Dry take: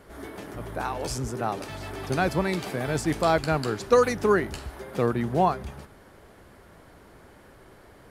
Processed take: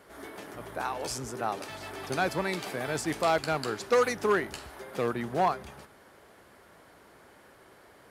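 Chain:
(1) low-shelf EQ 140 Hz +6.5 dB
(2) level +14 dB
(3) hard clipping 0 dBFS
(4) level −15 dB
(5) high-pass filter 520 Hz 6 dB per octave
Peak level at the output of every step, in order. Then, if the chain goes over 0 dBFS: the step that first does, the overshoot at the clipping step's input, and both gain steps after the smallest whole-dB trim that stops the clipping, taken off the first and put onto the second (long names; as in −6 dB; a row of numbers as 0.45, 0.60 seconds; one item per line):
−6.5, +7.5, 0.0, −15.0, −12.0 dBFS
step 2, 7.5 dB
step 2 +6 dB, step 4 −7 dB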